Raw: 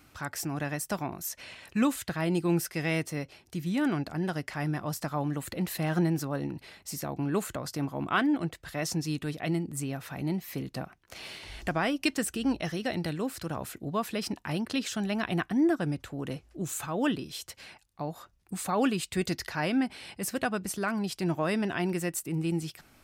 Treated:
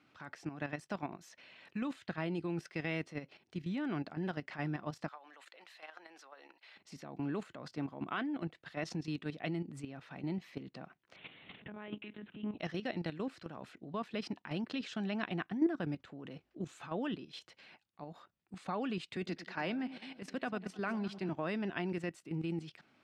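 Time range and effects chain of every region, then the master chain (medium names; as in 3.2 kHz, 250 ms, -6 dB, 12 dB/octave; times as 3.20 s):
5.08–6.76 s: Bessel high-pass 870 Hz, order 4 + compression 5:1, threshold -39 dBFS
11.16–12.59 s: peaking EQ 160 Hz +9 dB 1.1 oct + compression 10:1, threshold -27 dBFS + monotone LPC vocoder at 8 kHz 210 Hz
19.16–21.29 s: steep high-pass 160 Hz + echo whose repeats swap between lows and highs 102 ms, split 820 Hz, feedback 65%, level -12.5 dB
whole clip: Chebyshev band-pass 180–3400 Hz, order 2; level held to a coarse grid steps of 11 dB; trim -3 dB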